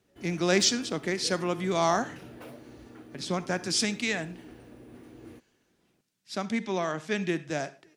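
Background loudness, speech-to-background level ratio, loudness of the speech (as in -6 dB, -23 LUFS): -48.0 LUFS, 19.5 dB, -28.5 LUFS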